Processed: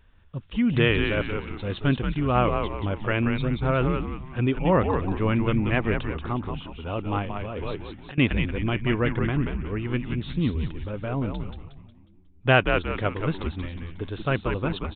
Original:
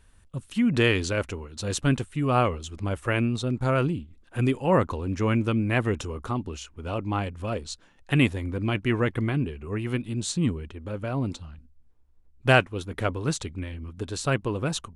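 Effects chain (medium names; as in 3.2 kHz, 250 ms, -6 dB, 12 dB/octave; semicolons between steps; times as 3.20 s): frequency-shifting echo 181 ms, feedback 40%, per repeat -93 Hz, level -5 dB; resampled via 8 kHz; 7.22–8.18 s: compressor with a negative ratio -32 dBFS, ratio -1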